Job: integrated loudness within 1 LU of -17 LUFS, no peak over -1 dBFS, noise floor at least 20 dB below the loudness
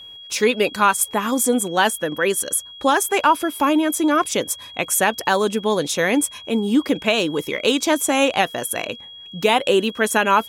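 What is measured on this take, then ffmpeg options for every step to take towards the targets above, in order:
steady tone 3.3 kHz; tone level -37 dBFS; loudness -19.5 LUFS; peak level -4.5 dBFS; loudness target -17.0 LUFS
-> -af "bandreject=f=3300:w=30"
-af "volume=1.33"

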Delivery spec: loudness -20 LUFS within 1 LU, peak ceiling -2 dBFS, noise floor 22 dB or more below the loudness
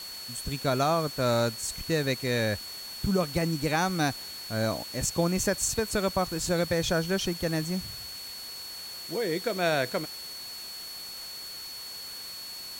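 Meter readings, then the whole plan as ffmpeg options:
steady tone 4.4 kHz; tone level -39 dBFS; noise floor -41 dBFS; noise floor target -52 dBFS; loudness -29.5 LUFS; peak level -12.5 dBFS; loudness target -20.0 LUFS
-> -af "bandreject=f=4400:w=30"
-af "afftdn=nr=11:nf=-41"
-af "volume=2.99"

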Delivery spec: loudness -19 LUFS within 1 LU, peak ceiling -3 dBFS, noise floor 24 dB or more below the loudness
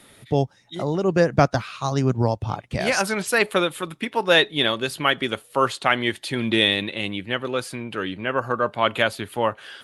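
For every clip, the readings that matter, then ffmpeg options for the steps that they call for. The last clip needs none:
loudness -22.5 LUFS; peak level -3.0 dBFS; loudness target -19.0 LUFS
-> -af "volume=1.5,alimiter=limit=0.708:level=0:latency=1"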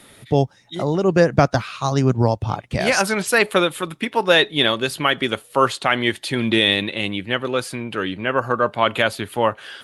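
loudness -19.5 LUFS; peak level -3.0 dBFS; noise floor -51 dBFS

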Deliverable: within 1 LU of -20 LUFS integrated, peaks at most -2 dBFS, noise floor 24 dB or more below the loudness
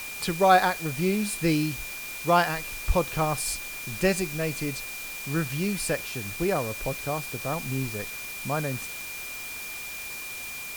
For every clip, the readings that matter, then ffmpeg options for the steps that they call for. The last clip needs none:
steady tone 2.4 kHz; tone level -37 dBFS; noise floor -37 dBFS; noise floor target -52 dBFS; loudness -27.5 LUFS; peak level -6.5 dBFS; loudness target -20.0 LUFS
-> -af "bandreject=f=2400:w=30"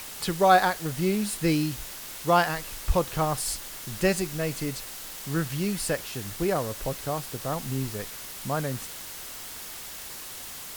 steady tone not found; noise floor -40 dBFS; noise floor target -52 dBFS
-> -af "afftdn=nr=12:nf=-40"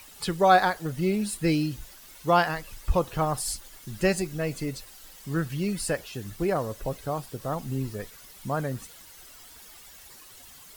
noise floor -49 dBFS; noise floor target -52 dBFS
-> -af "afftdn=nr=6:nf=-49"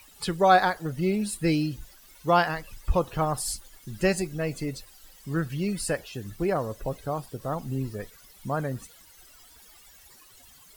noise floor -54 dBFS; loudness -27.5 LUFS; peak level -6.5 dBFS; loudness target -20.0 LUFS
-> -af "volume=2.37,alimiter=limit=0.794:level=0:latency=1"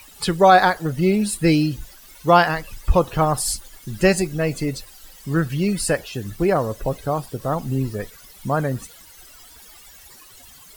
loudness -20.5 LUFS; peak level -2.0 dBFS; noise floor -46 dBFS

